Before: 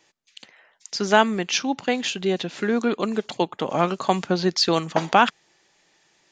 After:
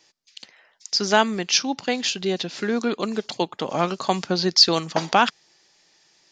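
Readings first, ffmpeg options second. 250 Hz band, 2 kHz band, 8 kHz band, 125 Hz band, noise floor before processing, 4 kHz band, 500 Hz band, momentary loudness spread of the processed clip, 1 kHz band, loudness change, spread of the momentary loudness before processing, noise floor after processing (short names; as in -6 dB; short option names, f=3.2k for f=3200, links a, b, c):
-1.5 dB, -1.0 dB, +4.5 dB, -1.5 dB, -64 dBFS, +5.5 dB, -1.5 dB, 11 LU, -1.5 dB, +1.0 dB, 7 LU, -61 dBFS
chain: -af "equalizer=f=5k:t=o:w=0.73:g=10,volume=-1.5dB"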